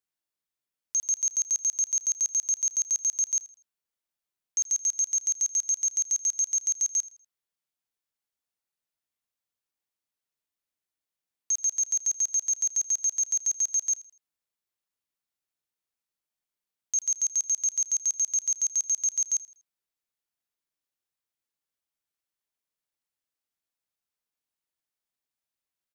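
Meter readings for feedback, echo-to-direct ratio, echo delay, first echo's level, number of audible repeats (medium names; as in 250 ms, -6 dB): 35%, -19.0 dB, 81 ms, -19.5 dB, 2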